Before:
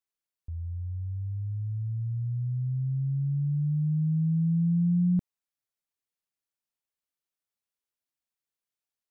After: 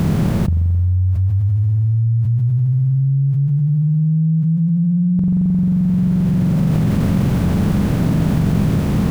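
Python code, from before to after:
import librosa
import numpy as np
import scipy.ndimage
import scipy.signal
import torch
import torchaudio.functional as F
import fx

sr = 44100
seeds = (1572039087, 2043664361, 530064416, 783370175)

y = fx.bin_compress(x, sr, power=0.4)
y = fx.rev_spring(y, sr, rt60_s=2.9, pass_ms=(44,), chirp_ms=30, drr_db=3.0)
y = fx.env_flatten(y, sr, amount_pct=100)
y = y * librosa.db_to_amplitude(2.0)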